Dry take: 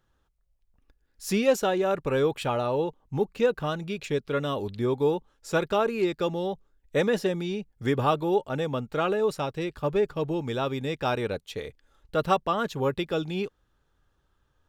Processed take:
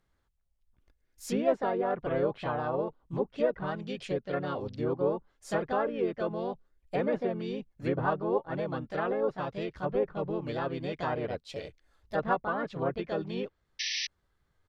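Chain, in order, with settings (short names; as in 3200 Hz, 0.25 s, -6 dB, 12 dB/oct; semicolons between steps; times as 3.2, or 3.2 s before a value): harmoniser -5 st -16 dB, +4 st -1 dB; treble ducked by the level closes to 1600 Hz, closed at -20 dBFS; painted sound noise, 13.79–14.07, 1700–6100 Hz -26 dBFS; gain -7 dB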